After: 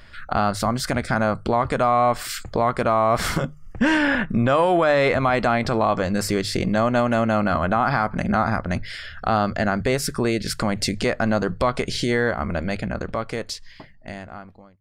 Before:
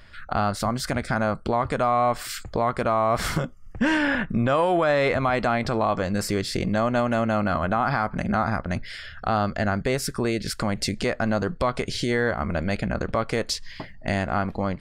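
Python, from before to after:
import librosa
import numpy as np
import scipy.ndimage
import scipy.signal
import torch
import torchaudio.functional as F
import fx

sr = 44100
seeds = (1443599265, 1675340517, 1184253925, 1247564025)

y = fx.fade_out_tail(x, sr, length_s=2.85)
y = fx.hum_notches(y, sr, base_hz=50, count=3)
y = F.gain(torch.from_numpy(y), 3.0).numpy()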